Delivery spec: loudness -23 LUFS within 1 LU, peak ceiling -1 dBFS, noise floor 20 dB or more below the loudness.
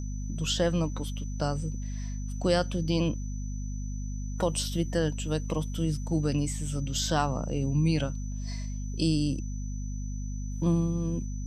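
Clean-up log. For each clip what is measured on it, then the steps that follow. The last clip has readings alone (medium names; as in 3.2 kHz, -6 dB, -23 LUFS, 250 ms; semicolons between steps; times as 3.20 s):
hum 50 Hz; highest harmonic 250 Hz; hum level -31 dBFS; steady tone 6 kHz; tone level -49 dBFS; loudness -30.5 LUFS; peak level -11.0 dBFS; loudness target -23.0 LUFS
-> de-hum 50 Hz, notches 5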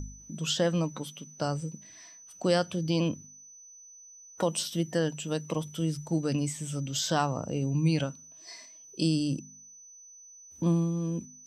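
hum not found; steady tone 6 kHz; tone level -49 dBFS
-> band-stop 6 kHz, Q 30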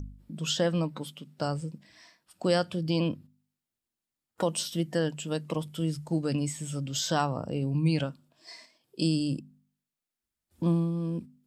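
steady tone not found; loudness -30.0 LUFS; peak level -11.5 dBFS; loudness target -23.0 LUFS
-> trim +7 dB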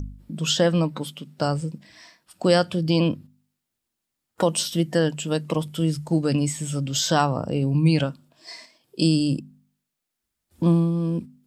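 loudness -23.0 LUFS; peak level -4.5 dBFS; noise floor -82 dBFS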